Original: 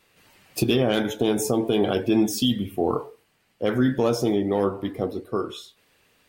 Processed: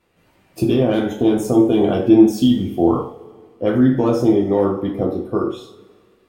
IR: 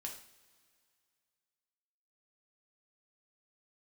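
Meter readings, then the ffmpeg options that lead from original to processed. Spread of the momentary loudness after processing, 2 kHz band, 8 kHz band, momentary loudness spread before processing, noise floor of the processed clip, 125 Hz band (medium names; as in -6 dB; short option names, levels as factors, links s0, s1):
10 LU, -1.0 dB, no reading, 8 LU, -58 dBFS, +6.0 dB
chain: -filter_complex "[0:a]tiltshelf=f=1500:g=6.5,dynaudnorm=f=130:g=11:m=3.76[s0];[1:a]atrim=start_sample=2205,asetrate=57330,aresample=44100[s1];[s0][s1]afir=irnorm=-1:irlink=0,volume=1.33"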